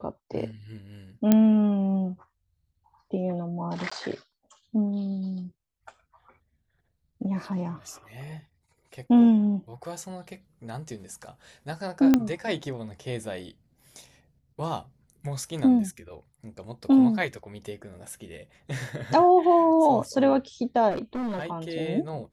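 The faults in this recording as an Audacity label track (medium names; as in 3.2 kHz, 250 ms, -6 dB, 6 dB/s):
1.320000	1.320000	pop -6 dBFS
3.900000	3.920000	dropout 15 ms
12.140000	12.140000	pop -7 dBFS
20.900000	21.470000	clipped -27 dBFS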